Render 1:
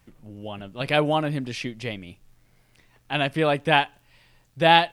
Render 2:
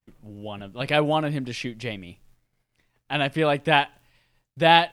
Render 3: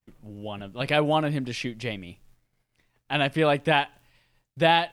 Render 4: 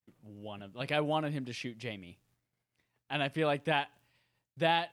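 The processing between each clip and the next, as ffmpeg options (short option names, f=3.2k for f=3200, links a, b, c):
-af "agate=range=-33dB:threshold=-49dB:ratio=3:detection=peak"
-af "alimiter=limit=-8dB:level=0:latency=1:release=217"
-af "highpass=72,volume=-8.5dB"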